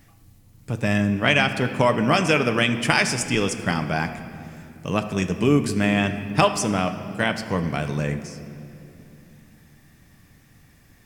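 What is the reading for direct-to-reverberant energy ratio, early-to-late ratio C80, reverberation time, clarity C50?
7.0 dB, 11.0 dB, 2.9 s, 10.0 dB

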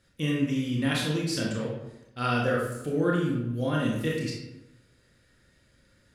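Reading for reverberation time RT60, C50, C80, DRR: 0.95 s, 1.5 dB, 5.0 dB, -3.5 dB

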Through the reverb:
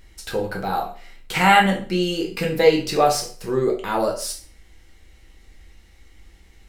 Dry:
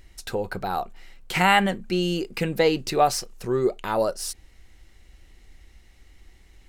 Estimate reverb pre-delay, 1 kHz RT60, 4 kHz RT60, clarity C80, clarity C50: 4 ms, 0.40 s, 0.40 s, 14.0 dB, 9.0 dB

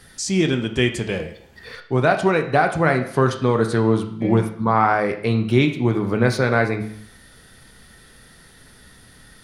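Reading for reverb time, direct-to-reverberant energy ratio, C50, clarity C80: 0.65 s, 4.5 dB, 10.0 dB, 13.0 dB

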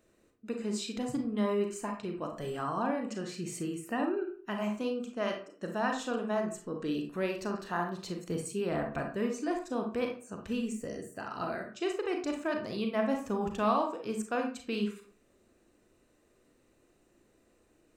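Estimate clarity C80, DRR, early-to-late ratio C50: 12.0 dB, 3.0 dB, 6.5 dB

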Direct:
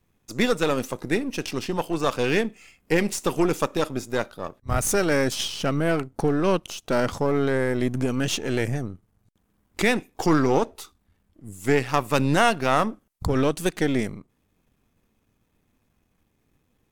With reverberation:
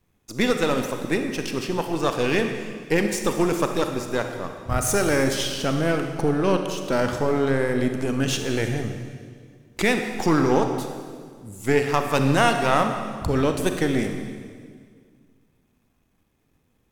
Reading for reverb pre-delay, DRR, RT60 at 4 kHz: 32 ms, 5.0 dB, 1.8 s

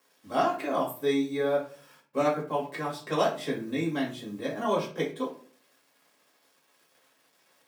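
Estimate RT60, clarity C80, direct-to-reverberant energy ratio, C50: 0.45 s, 13.5 dB, -4.5 dB, 8.0 dB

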